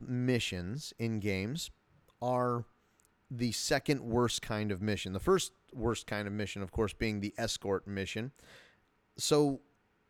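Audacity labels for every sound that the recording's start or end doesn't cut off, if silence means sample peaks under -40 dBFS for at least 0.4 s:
2.220000	2.620000	sound
3.310000	8.280000	sound
9.190000	9.560000	sound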